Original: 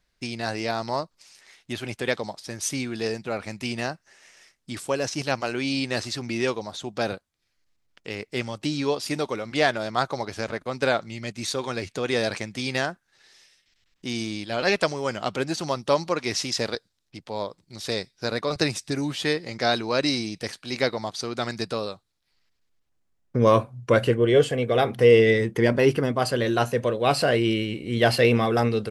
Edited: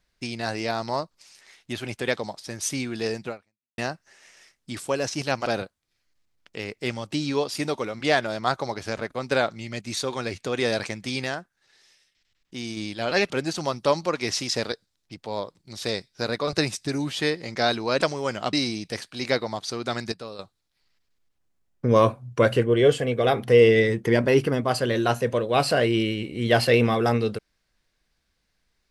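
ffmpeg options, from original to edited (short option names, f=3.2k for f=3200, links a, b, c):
-filter_complex "[0:a]asplit=10[a][b][c][d][e][f][g][h][i][j];[a]atrim=end=3.78,asetpts=PTS-STARTPTS,afade=t=out:st=3.29:d=0.49:c=exp[k];[b]atrim=start=3.78:end=5.462,asetpts=PTS-STARTPTS,afade=t=in:d=0.004:c=hsin[l];[c]atrim=start=6.968:end=12.752[m];[d]atrim=start=12.748:end=14.282,asetpts=PTS-STARTPTS,volume=-4dB[n];[e]atrim=start=14.278:end=14.812[o];[f]atrim=start=15.328:end=20.042[p];[g]atrim=start=14.808:end=15.332[q];[h]atrim=start=20.038:end=21.632[r];[i]atrim=start=21.628:end=21.902,asetpts=PTS-STARTPTS,volume=-9dB[s];[j]atrim=start=21.898[t];[k][l]concat=n=2:v=0:a=1[u];[u][m]acrossfade=d=0.004:c1=hsin:c2=hsin[v];[v][n]acrossfade=d=0.004:c1=hsin:c2=hsin[w];[w][o]acrossfade=d=0.004:c1=hsin:c2=hsin[x];[x][p]acrossfade=d=0.004:c1=hsin:c2=hsin[y];[y][q]acrossfade=d=0.004:c1=hsin:c2=hsin[z];[z][r]acrossfade=d=0.004:c1=hsin:c2=hsin[aa];[aa][s]acrossfade=d=0.004:c1=hsin:c2=hsin[ab];[ab][t]acrossfade=d=0.004:c1=hsin:c2=hsin"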